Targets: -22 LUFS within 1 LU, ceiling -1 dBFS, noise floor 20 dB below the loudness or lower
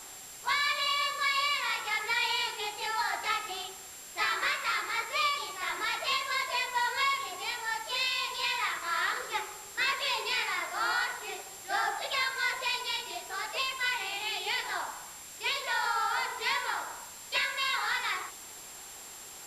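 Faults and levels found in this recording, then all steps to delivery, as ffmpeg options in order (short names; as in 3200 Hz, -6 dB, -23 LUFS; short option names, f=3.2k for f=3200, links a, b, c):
steady tone 7400 Hz; tone level -48 dBFS; noise floor -47 dBFS; noise floor target -51 dBFS; loudness -30.5 LUFS; peak -17.0 dBFS; loudness target -22.0 LUFS
-> -af "bandreject=f=7.4k:w=30"
-af "afftdn=nr=6:nf=-47"
-af "volume=8.5dB"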